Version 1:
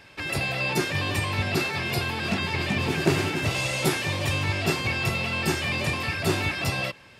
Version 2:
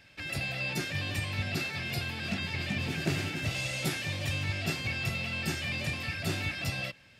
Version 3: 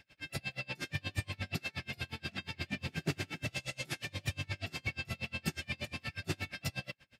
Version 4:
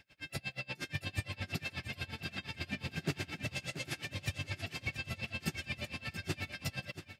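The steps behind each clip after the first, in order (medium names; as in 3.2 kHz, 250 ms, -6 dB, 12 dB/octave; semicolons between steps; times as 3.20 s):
fifteen-band graphic EQ 400 Hz -8 dB, 1 kHz -10 dB, 10 kHz -3 dB; trim -5.5 dB
logarithmic tremolo 8.4 Hz, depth 33 dB
feedback delay 682 ms, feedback 18%, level -11 dB; trim -1 dB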